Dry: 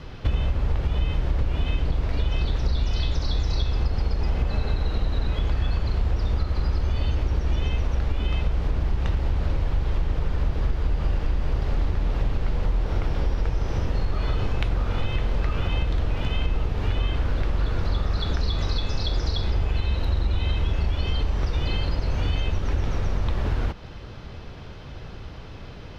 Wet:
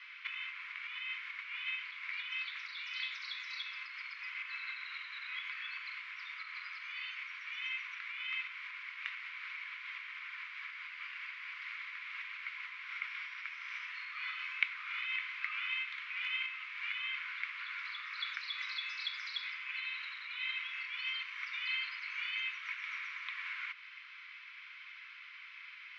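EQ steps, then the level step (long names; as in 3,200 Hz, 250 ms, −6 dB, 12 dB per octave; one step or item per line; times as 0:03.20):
Chebyshev high-pass with heavy ripple 1,000 Hz, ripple 3 dB
low-pass with resonance 2,200 Hz, resonance Q 8.7
first difference
+4.0 dB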